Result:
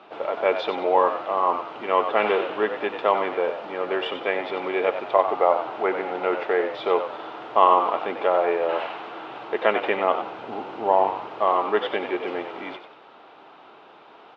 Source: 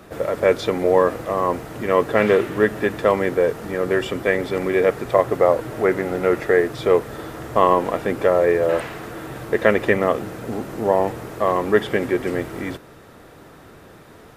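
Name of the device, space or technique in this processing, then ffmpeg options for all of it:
phone earpiece: -filter_complex "[0:a]highpass=480,equalizer=f=510:t=q:w=4:g=-6,equalizer=f=840:t=q:w=4:g=6,equalizer=f=1800:t=q:w=4:g=-10,equalizer=f=2900:t=q:w=4:g=4,lowpass=f=3600:w=0.5412,lowpass=f=3600:w=1.3066,asettb=1/sr,asplit=3[s0][s1][s2];[s0]atrim=end=10.324[s3];[s1]atrim=start=10.32:end=11.48,asetpts=PTS-STARTPTS,afade=t=in:d=0.004:c=qsin,afade=t=out:st=1.156:d=0.004:c=qsin,equalizer=f=85:w=1.2:g=9.5[s4];[s2]atrim=start=11.476[s5];[s3][s4]acrossfade=d=0.004:c1=hsin:c2=qsin[s6];[s6][s5]acrossfade=d=0.004:c1=qsin:c2=hsin,asplit=5[s7][s8][s9][s10][s11];[s8]adelay=93,afreqshift=77,volume=0.355[s12];[s9]adelay=186,afreqshift=154,volume=0.12[s13];[s10]adelay=279,afreqshift=231,volume=0.0412[s14];[s11]adelay=372,afreqshift=308,volume=0.014[s15];[s7][s12][s13][s14][s15]amix=inputs=5:normalize=0"

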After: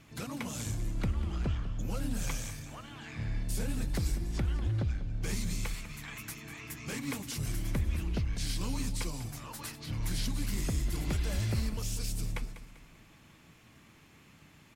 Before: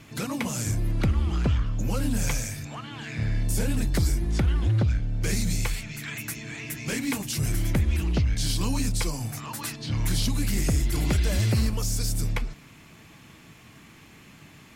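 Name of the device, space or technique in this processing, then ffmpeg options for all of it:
octave pedal: -filter_complex "[0:a]asplit=2[s0][s1];[s1]asetrate=22050,aresample=44100,atempo=2,volume=0.355[s2];[s0][s2]amix=inputs=2:normalize=0,aecho=1:1:196|392|588|784:0.224|0.0895|0.0358|0.0143,volume=0.355"

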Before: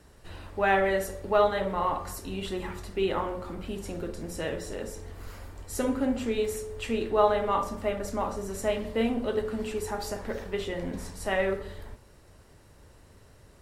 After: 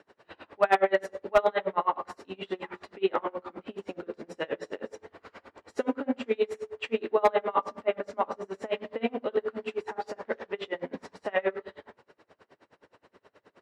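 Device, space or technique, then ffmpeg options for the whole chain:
helicopter radio: -af "highpass=330,lowpass=2900,aeval=exprs='val(0)*pow(10,-30*(0.5-0.5*cos(2*PI*9.5*n/s))/20)':c=same,asoftclip=type=hard:threshold=0.106,volume=2.24"

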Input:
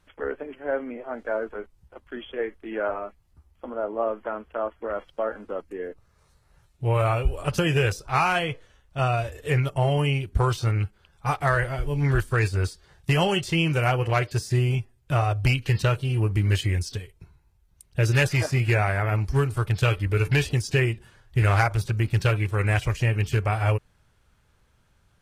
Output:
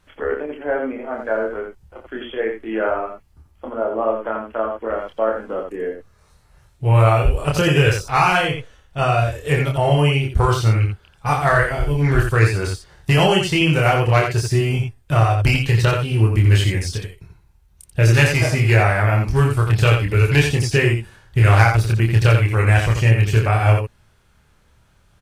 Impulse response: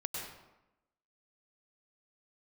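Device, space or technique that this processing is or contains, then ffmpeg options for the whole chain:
slapback doubling: -filter_complex "[0:a]asplit=3[s0][s1][s2];[s1]adelay=27,volume=0.708[s3];[s2]adelay=87,volume=0.562[s4];[s0][s3][s4]amix=inputs=3:normalize=0,volume=1.68"

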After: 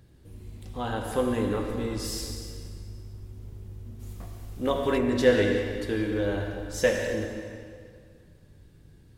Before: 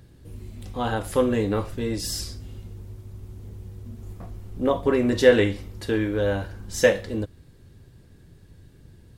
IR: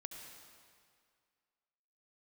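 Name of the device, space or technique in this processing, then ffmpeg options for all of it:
stairwell: -filter_complex "[1:a]atrim=start_sample=2205[s0];[0:a][s0]afir=irnorm=-1:irlink=0,asplit=3[s1][s2][s3];[s1]afade=t=out:st=3.99:d=0.02[s4];[s2]highshelf=f=2000:g=10.5,afade=t=in:st=3.99:d=0.02,afade=t=out:st=4.97:d=0.02[s5];[s3]afade=t=in:st=4.97:d=0.02[s6];[s4][s5][s6]amix=inputs=3:normalize=0"

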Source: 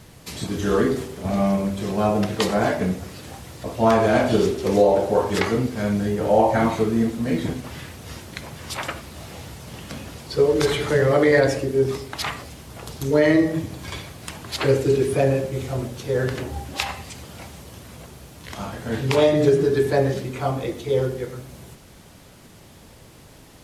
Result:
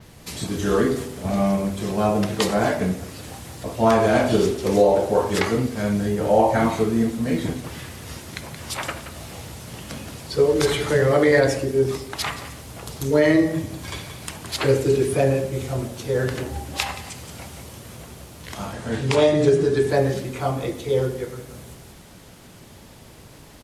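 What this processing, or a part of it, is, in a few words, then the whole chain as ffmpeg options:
ducked delay: -filter_complex "[0:a]asettb=1/sr,asplit=3[s0][s1][s2];[s0]atrim=end=18.734[s3];[s1]atrim=start=18.73:end=19.9,asetpts=PTS-STARTPTS,afade=t=in:d=0.004:c=qsin,afade=t=out:st=1.166:d=0.004:c=qsin,lowpass=f=10000:w=0.5412,lowpass=f=10000:w=1.3066[s4];[s2]atrim=start=19.896[s5];[s3][s4]acrossfade=d=0.004:c1=hsin:c2=qsin[s6];[s6][s5]acrossfade=d=0.004:c1=qsin:c2=hsin,adynamicequalizer=threshold=0.00282:dfrequency=9700:dqfactor=0.87:tfrequency=9700:tqfactor=0.87:attack=5:release=100:ratio=0.375:range=2:mode=boostabove:tftype=bell,asplit=3[s7][s8][s9];[s8]adelay=175,volume=0.668[s10];[s9]apad=whole_len=1049907[s11];[s10][s11]sidechaincompress=threshold=0.0126:ratio=8:attack=16:release=344[s12];[s7][s12]amix=inputs=2:normalize=0"

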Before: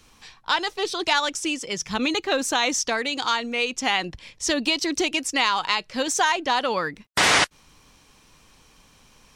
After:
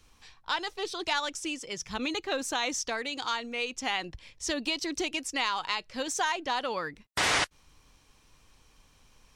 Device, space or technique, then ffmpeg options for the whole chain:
low shelf boost with a cut just above: -af "lowshelf=f=100:g=7.5,equalizer=f=190:t=o:w=0.76:g=-4,volume=0.398"

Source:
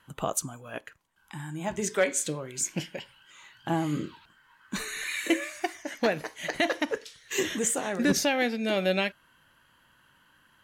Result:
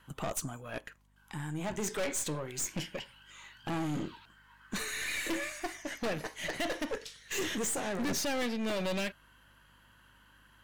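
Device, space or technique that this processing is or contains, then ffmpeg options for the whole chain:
valve amplifier with mains hum: -af "aeval=exprs='(tanh(39.8*val(0)+0.45)-tanh(0.45))/39.8':c=same,aeval=exprs='val(0)+0.000398*(sin(2*PI*50*n/s)+sin(2*PI*2*50*n/s)/2+sin(2*PI*3*50*n/s)/3+sin(2*PI*4*50*n/s)/4+sin(2*PI*5*50*n/s)/5)':c=same,volume=1.19"

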